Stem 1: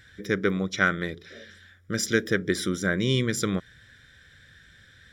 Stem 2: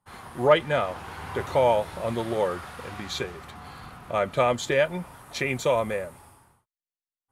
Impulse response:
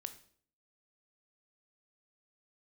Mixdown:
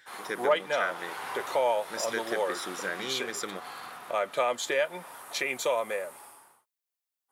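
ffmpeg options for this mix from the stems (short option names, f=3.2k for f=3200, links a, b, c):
-filter_complex "[0:a]volume=-3dB[a];[1:a]highshelf=f=10k:g=7,volume=2.5dB[b];[a][b]amix=inputs=2:normalize=0,highpass=450,acompressor=threshold=-34dB:ratio=1.5"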